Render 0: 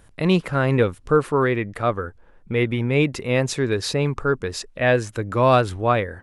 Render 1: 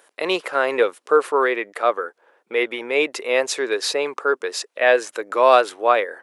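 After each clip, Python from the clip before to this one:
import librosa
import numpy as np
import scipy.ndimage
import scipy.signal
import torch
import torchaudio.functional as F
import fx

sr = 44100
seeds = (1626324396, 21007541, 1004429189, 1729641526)

y = scipy.signal.sosfilt(scipy.signal.butter(4, 410.0, 'highpass', fs=sr, output='sos'), x)
y = y * librosa.db_to_amplitude(3.5)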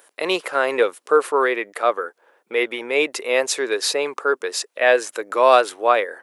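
y = fx.high_shelf(x, sr, hz=9500.0, db=10.0)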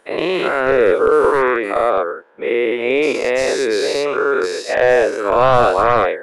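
y = fx.spec_dilate(x, sr, span_ms=240)
y = np.clip(y, -10.0 ** (-4.0 / 20.0), 10.0 ** (-4.0 / 20.0))
y = fx.riaa(y, sr, side='playback')
y = y * librosa.db_to_amplitude(-3.0)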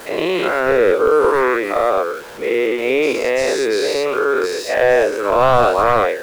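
y = x + 0.5 * 10.0 ** (-29.0 / 20.0) * np.sign(x)
y = y * librosa.db_to_amplitude(-1.0)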